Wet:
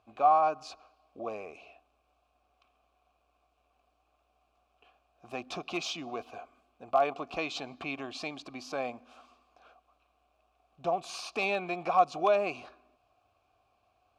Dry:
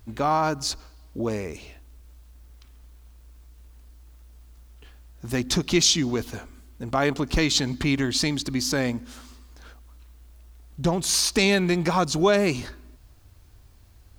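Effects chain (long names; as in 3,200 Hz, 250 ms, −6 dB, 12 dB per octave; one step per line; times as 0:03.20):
in parallel at −6 dB: wrap-around overflow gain 10 dB
on the sum: formant filter a
level +1.5 dB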